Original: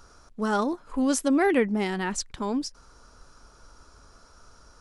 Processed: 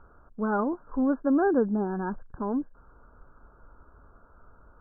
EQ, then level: brick-wall FIR low-pass 1.7 kHz; distance through air 450 m; 0.0 dB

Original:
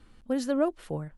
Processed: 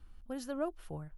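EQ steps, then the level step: ten-band graphic EQ 125 Hz -9 dB, 250 Hz -12 dB, 500 Hz -12 dB, 1 kHz -6 dB, 2 kHz -11 dB, 4 kHz -9 dB, 8 kHz -12 dB; +4.0 dB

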